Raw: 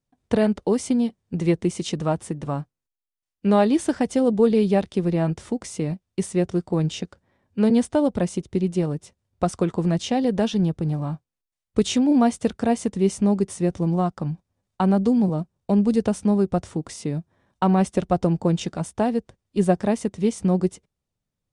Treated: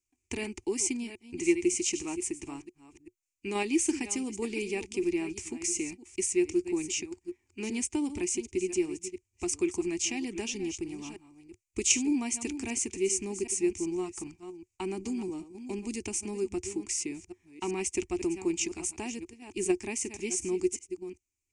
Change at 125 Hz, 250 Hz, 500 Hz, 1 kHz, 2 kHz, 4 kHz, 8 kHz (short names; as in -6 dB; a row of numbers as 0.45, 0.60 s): -23.0, -11.0, -9.5, -16.0, -1.0, -3.0, +7.0 dB